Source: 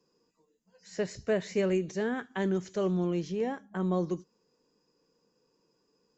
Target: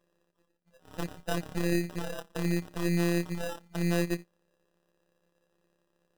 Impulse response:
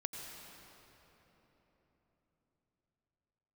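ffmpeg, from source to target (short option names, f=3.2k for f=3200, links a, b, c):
-af "aeval=exprs='if(lt(val(0),0),0.447*val(0),val(0))':c=same,afftfilt=real='hypot(re,im)*cos(PI*b)':imag='0':win_size=1024:overlap=0.75,acrusher=samples=20:mix=1:aa=0.000001,volume=4.5dB"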